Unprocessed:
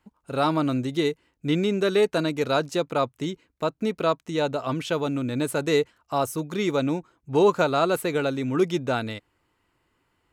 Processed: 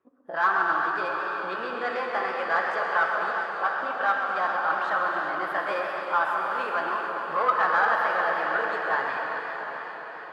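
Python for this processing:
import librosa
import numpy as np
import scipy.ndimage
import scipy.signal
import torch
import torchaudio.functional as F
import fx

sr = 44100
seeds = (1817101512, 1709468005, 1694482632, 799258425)

y = fx.pitch_heads(x, sr, semitones=3.5)
y = fx.peak_eq(y, sr, hz=1400.0, db=11.0, octaves=1.8)
y = 10.0 ** (-14.0 / 20.0) * np.tanh(y / 10.0 ** (-14.0 / 20.0))
y = fx.auto_wah(y, sr, base_hz=410.0, top_hz=1200.0, q=2.0, full_db=-25.5, direction='up')
y = fx.echo_diffused(y, sr, ms=714, feedback_pct=48, wet_db=-9.0)
y = fx.rev_gated(y, sr, seeds[0], gate_ms=460, shape='flat', drr_db=1.0)
y = fx.echo_warbled(y, sr, ms=134, feedback_pct=79, rate_hz=2.8, cents=145, wet_db=-10.5)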